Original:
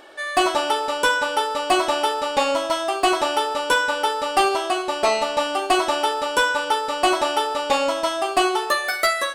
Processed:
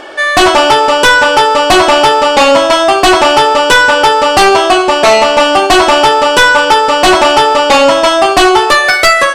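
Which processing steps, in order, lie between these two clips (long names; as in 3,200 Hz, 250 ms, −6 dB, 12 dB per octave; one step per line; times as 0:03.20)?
low-pass filter 7,300 Hz 12 dB per octave
notch filter 3,900 Hz, Q 11
sine wavefolder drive 7 dB, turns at −8 dBFS
level +6.5 dB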